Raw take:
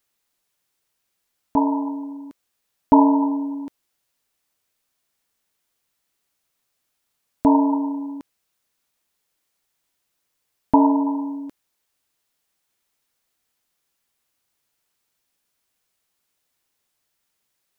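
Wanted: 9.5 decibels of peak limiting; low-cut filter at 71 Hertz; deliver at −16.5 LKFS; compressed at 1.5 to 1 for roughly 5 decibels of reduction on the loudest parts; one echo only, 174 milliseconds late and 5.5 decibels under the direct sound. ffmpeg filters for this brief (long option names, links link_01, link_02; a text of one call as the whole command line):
ffmpeg -i in.wav -af "highpass=71,acompressor=threshold=-23dB:ratio=1.5,alimiter=limit=-15.5dB:level=0:latency=1,aecho=1:1:174:0.531,volume=10.5dB" out.wav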